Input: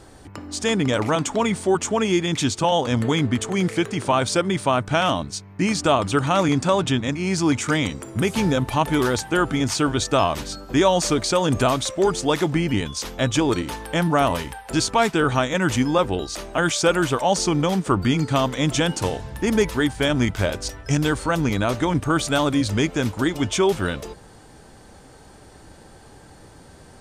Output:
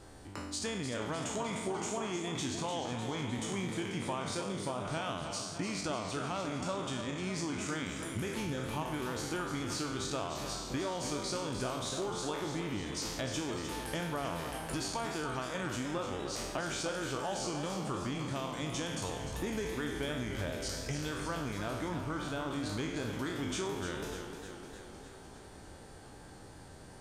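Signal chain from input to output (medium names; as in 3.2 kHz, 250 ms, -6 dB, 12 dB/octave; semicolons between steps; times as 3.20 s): spectral sustain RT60 0.77 s; 4.43–4.85 s: peaking EQ 1.9 kHz -13.5 dB 1.2 oct; compression 6:1, threshold -26 dBFS, peak gain reduction 15 dB; 21.88–22.51 s: peaking EQ 8.4 kHz -10 dB 2.1 oct; modulated delay 302 ms, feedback 65%, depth 88 cents, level -8.5 dB; trim -8.5 dB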